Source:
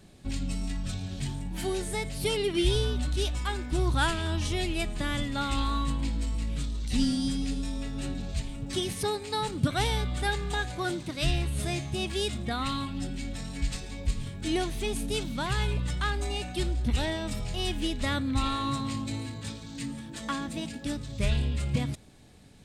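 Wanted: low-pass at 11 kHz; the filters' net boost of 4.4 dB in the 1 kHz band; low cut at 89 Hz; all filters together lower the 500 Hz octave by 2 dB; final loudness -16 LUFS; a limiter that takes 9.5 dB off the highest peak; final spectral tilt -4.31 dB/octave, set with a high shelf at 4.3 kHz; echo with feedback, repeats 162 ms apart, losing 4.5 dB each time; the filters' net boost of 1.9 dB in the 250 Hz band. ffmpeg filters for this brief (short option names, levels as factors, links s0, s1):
-af "highpass=89,lowpass=11000,equalizer=f=250:t=o:g=4,equalizer=f=500:t=o:g=-6.5,equalizer=f=1000:t=o:g=7.5,highshelf=f=4300:g=-5.5,alimiter=limit=0.0841:level=0:latency=1,aecho=1:1:162|324|486|648|810|972|1134|1296|1458:0.596|0.357|0.214|0.129|0.0772|0.0463|0.0278|0.0167|0.01,volume=5.31"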